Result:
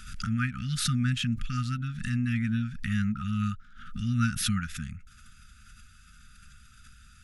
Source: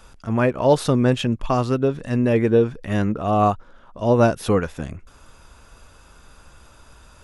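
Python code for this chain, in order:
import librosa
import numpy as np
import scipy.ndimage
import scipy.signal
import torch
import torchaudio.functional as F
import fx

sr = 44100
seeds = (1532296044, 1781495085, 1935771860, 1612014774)

y = fx.brickwall_bandstop(x, sr, low_hz=250.0, high_hz=1200.0)
y = fx.pre_swell(y, sr, db_per_s=59.0)
y = F.gain(torch.from_numpy(y), -5.5).numpy()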